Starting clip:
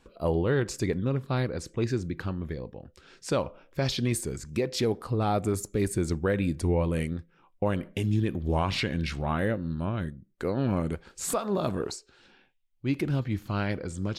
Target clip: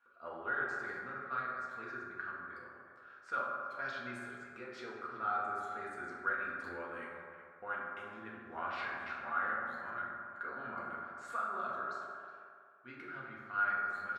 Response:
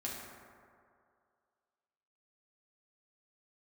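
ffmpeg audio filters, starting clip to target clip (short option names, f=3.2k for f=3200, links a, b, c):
-filter_complex "[0:a]bandpass=f=1.4k:t=q:w=9.9:csg=0,asplit=2[a][b];[b]adelay=370,highpass=300,lowpass=3.4k,asoftclip=type=hard:threshold=-37dB,volume=-13dB[c];[a][c]amix=inputs=2:normalize=0[d];[1:a]atrim=start_sample=2205[e];[d][e]afir=irnorm=-1:irlink=0,volume=8dB"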